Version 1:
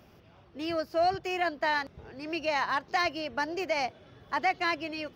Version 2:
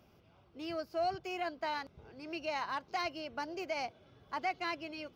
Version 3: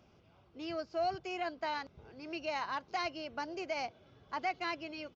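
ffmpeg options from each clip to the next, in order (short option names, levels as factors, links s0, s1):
-af "bandreject=f=1800:w=7.4,volume=0.422"
-af "aresample=16000,aresample=44100"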